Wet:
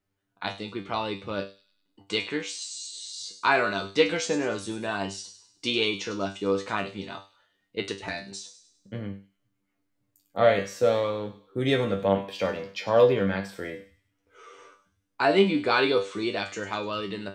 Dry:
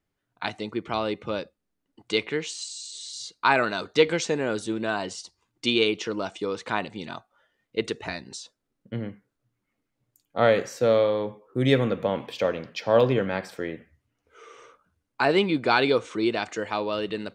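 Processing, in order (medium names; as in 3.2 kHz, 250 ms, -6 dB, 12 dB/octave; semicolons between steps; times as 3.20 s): feedback comb 98 Hz, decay 0.28 s, harmonics all, mix 90%; on a send: feedback echo behind a high-pass 100 ms, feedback 45%, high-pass 4.5 kHz, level -9 dB; on the sum: trim +7.5 dB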